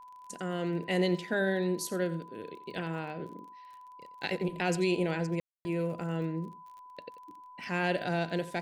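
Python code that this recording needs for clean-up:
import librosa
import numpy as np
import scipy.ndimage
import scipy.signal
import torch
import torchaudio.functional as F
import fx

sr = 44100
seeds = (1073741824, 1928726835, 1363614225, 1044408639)

y = fx.fix_declick_ar(x, sr, threshold=6.5)
y = fx.notch(y, sr, hz=1000.0, q=30.0)
y = fx.fix_ambience(y, sr, seeds[0], print_start_s=3.49, print_end_s=3.99, start_s=5.4, end_s=5.65)
y = fx.fix_echo_inverse(y, sr, delay_ms=88, level_db=-15.5)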